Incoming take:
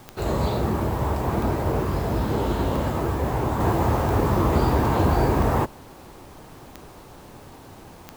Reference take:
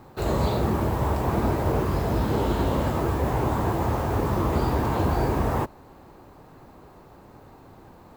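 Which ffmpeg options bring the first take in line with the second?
-af "adeclick=t=4,agate=range=0.0891:threshold=0.0141,asetnsamples=n=441:p=0,asendcmd='3.6 volume volume -3.5dB',volume=1"

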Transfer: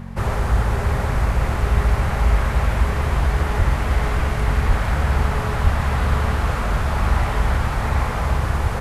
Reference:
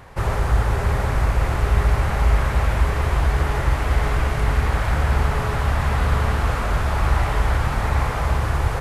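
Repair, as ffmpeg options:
-filter_complex "[0:a]bandreject=f=45.5:t=h:w=4,bandreject=f=91:t=h:w=4,bandreject=f=136.5:t=h:w=4,bandreject=f=182:t=h:w=4,bandreject=f=227.5:t=h:w=4,asplit=3[s0][s1][s2];[s0]afade=t=out:st=3.58:d=0.02[s3];[s1]highpass=f=140:w=0.5412,highpass=f=140:w=1.3066,afade=t=in:st=3.58:d=0.02,afade=t=out:st=3.7:d=0.02[s4];[s2]afade=t=in:st=3.7:d=0.02[s5];[s3][s4][s5]amix=inputs=3:normalize=0,asplit=3[s6][s7][s8];[s6]afade=t=out:st=4.67:d=0.02[s9];[s7]highpass=f=140:w=0.5412,highpass=f=140:w=1.3066,afade=t=in:st=4.67:d=0.02,afade=t=out:st=4.79:d=0.02[s10];[s8]afade=t=in:st=4.79:d=0.02[s11];[s9][s10][s11]amix=inputs=3:normalize=0,asplit=3[s12][s13][s14];[s12]afade=t=out:st=5.63:d=0.02[s15];[s13]highpass=f=140:w=0.5412,highpass=f=140:w=1.3066,afade=t=in:st=5.63:d=0.02,afade=t=out:st=5.75:d=0.02[s16];[s14]afade=t=in:st=5.75:d=0.02[s17];[s15][s16][s17]amix=inputs=3:normalize=0"

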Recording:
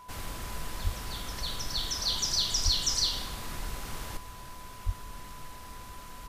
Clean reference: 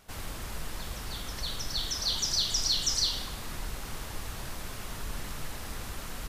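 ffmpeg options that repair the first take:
-filter_complex "[0:a]bandreject=f=1000:w=30,asplit=3[s0][s1][s2];[s0]afade=t=out:st=0.83:d=0.02[s3];[s1]highpass=f=140:w=0.5412,highpass=f=140:w=1.3066,afade=t=in:st=0.83:d=0.02,afade=t=out:st=0.95:d=0.02[s4];[s2]afade=t=in:st=0.95:d=0.02[s5];[s3][s4][s5]amix=inputs=3:normalize=0,asplit=3[s6][s7][s8];[s6]afade=t=out:st=2.64:d=0.02[s9];[s7]highpass=f=140:w=0.5412,highpass=f=140:w=1.3066,afade=t=in:st=2.64:d=0.02,afade=t=out:st=2.76:d=0.02[s10];[s8]afade=t=in:st=2.76:d=0.02[s11];[s9][s10][s11]amix=inputs=3:normalize=0,asplit=3[s12][s13][s14];[s12]afade=t=out:st=4.85:d=0.02[s15];[s13]highpass=f=140:w=0.5412,highpass=f=140:w=1.3066,afade=t=in:st=4.85:d=0.02,afade=t=out:st=4.97:d=0.02[s16];[s14]afade=t=in:st=4.97:d=0.02[s17];[s15][s16][s17]amix=inputs=3:normalize=0,asetnsamples=n=441:p=0,asendcmd='4.17 volume volume 7.5dB',volume=1"

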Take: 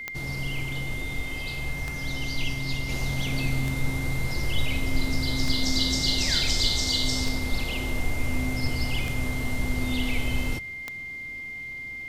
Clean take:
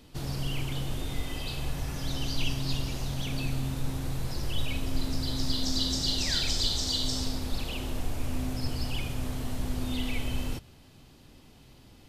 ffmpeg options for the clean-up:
-af "adeclick=t=4,bandreject=f=2100:w=30,asetnsamples=n=441:p=0,asendcmd='2.89 volume volume -4dB',volume=1"

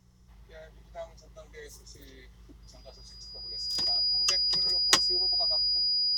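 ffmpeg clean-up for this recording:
-af "bandreject=f=60.7:t=h:w=4,bandreject=f=121.4:t=h:w=4,bandreject=f=182.1:t=h:w=4,bandreject=f=4900:w=30"

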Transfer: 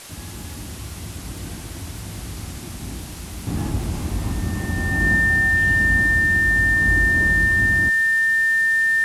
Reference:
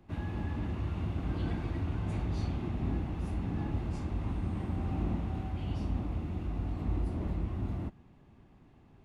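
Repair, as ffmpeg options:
-af "adeclick=t=4,bandreject=f=1800:w=30,afwtdn=0.013,asetnsamples=n=441:p=0,asendcmd='3.47 volume volume -9.5dB',volume=1"

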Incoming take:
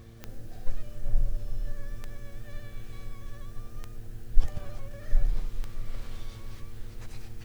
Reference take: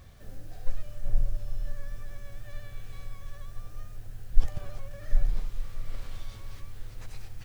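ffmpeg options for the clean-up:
-af "adeclick=t=4,bandreject=f=114:t=h:w=4,bandreject=f=228:t=h:w=4,bandreject=f=342:t=h:w=4,bandreject=f=456:t=h:w=4"

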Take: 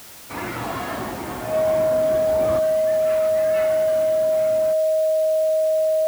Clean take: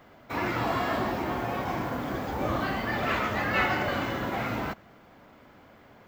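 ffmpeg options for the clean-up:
-af "bandreject=f=630:w=30,afwtdn=0.0079,asetnsamples=n=441:p=0,asendcmd='2.59 volume volume 9dB',volume=1"

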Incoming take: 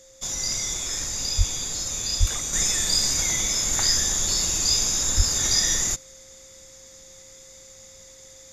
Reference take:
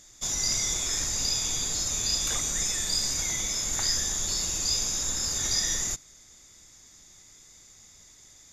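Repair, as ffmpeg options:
-filter_complex "[0:a]bandreject=f=530:w=30,asplit=3[s0][s1][s2];[s0]afade=t=out:st=1.37:d=0.02[s3];[s1]highpass=f=140:w=0.5412,highpass=f=140:w=1.3066,afade=t=in:st=1.37:d=0.02,afade=t=out:st=1.49:d=0.02[s4];[s2]afade=t=in:st=1.49:d=0.02[s5];[s3][s4][s5]amix=inputs=3:normalize=0,asplit=3[s6][s7][s8];[s6]afade=t=out:st=2.19:d=0.02[s9];[s7]highpass=f=140:w=0.5412,highpass=f=140:w=1.3066,afade=t=in:st=2.19:d=0.02,afade=t=out:st=2.31:d=0.02[s10];[s8]afade=t=in:st=2.31:d=0.02[s11];[s9][s10][s11]amix=inputs=3:normalize=0,asplit=3[s12][s13][s14];[s12]afade=t=out:st=5.16:d=0.02[s15];[s13]highpass=f=140:w=0.5412,highpass=f=140:w=1.3066,afade=t=in:st=5.16:d=0.02,afade=t=out:st=5.28:d=0.02[s16];[s14]afade=t=in:st=5.28:d=0.02[s17];[s15][s16][s17]amix=inputs=3:normalize=0,asetnsamples=n=441:p=0,asendcmd='2.53 volume volume -5.5dB',volume=1"

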